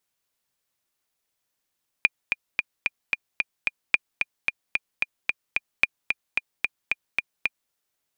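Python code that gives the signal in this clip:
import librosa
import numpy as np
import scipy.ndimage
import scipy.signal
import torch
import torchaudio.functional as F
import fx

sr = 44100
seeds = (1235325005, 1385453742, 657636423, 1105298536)

y = fx.click_track(sr, bpm=222, beats=7, bars=3, hz=2420.0, accent_db=5.5, level_db=-3.5)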